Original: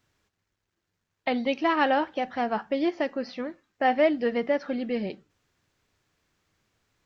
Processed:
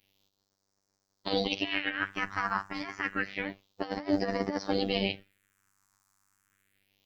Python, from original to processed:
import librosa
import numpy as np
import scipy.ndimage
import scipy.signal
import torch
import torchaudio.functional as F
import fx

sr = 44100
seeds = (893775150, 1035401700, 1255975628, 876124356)

y = fx.spec_clip(x, sr, under_db=21)
y = fx.over_compress(y, sr, threshold_db=-27.0, ratio=-0.5)
y = fx.phaser_stages(y, sr, stages=4, low_hz=490.0, high_hz=2800.0, hz=0.29, feedback_pct=40)
y = fx.robotise(y, sr, hz=97.9)
y = F.gain(torch.from_numpy(y), 2.5).numpy()